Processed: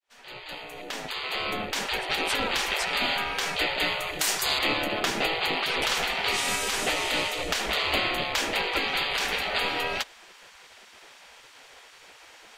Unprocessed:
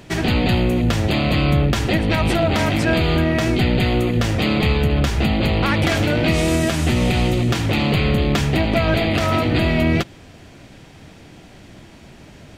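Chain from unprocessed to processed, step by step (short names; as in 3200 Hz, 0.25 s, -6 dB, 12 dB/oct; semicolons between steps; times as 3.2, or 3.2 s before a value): opening faded in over 2.23 s; 4.19–4.59 tone controls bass -4 dB, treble +14 dB; spectral gate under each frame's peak -15 dB weak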